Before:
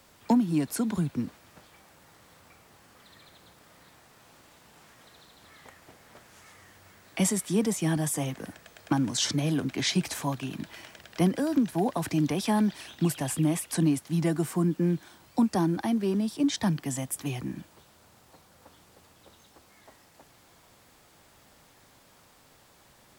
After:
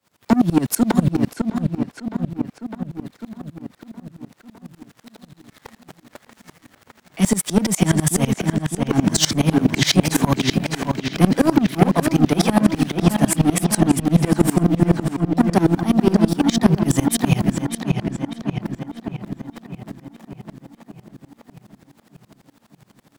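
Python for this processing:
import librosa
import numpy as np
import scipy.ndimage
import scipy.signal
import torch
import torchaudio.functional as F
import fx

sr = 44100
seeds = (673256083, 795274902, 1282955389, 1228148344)

p1 = scipy.signal.sosfilt(scipy.signal.butter(2, 110.0, 'highpass', fs=sr, output='sos'), x)
p2 = fx.bass_treble(p1, sr, bass_db=3, treble_db=-1)
p3 = fx.leveller(p2, sr, passes=3)
p4 = fx.rider(p3, sr, range_db=10, speed_s=2.0)
p5 = p4 + fx.echo_filtered(p4, sr, ms=607, feedback_pct=64, hz=4600.0, wet_db=-5, dry=0)
p6 = fx.tremolo_decay(p5, sr, direction='swelling', hz=12.0, depth_db=24)
y = p6 * 10.0 ** (7.0 / 20.0)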